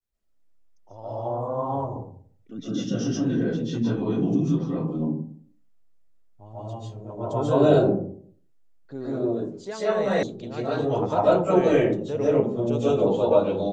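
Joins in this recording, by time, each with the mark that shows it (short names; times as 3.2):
10.23 sound cut off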